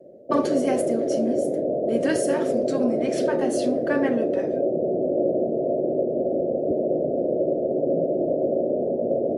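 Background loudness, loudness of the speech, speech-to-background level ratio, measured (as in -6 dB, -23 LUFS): -24.0 LUFS, -28.5 LUFS, -4.5 dB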